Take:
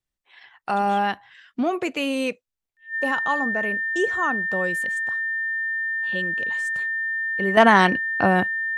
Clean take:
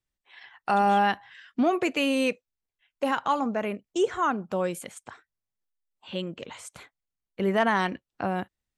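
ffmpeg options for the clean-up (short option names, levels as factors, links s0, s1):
-af "bandreject=f=1800:w=30,asetnsamples=n=441:p=0,asendcmd='7.57 volume volume -9.5dB',volume=1"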